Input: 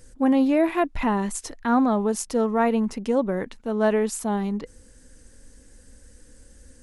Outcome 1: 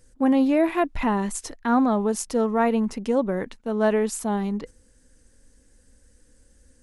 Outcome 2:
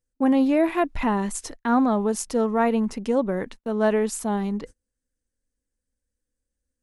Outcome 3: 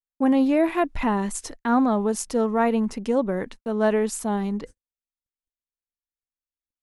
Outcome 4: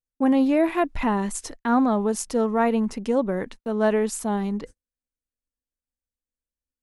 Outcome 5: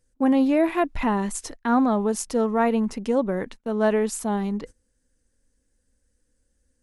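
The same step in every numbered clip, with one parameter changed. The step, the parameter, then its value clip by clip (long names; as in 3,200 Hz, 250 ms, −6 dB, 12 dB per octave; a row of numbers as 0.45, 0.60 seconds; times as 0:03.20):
noise gate, range: −7, −33, −58, −46, −20 decibels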